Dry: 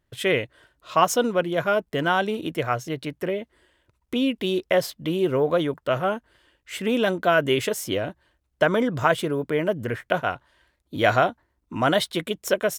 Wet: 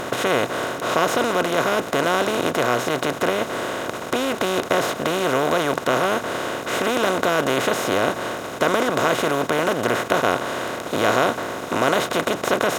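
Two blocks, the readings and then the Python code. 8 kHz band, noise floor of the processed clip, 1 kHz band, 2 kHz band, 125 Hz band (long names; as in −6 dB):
+6.0 dB, −32 dBFS, +4.5 dB, +4.5 dB, −0.5 dB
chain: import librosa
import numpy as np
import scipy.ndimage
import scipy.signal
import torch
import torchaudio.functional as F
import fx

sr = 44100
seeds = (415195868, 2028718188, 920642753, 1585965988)

y = fx.bin_compress(x, sr, power=0.2)
y = fx.dmg_crackle(y, sr, seeds[0], per_s=78.0, level_db=-42.0)
y = y * librosa.db_to_amplitude(-7.5)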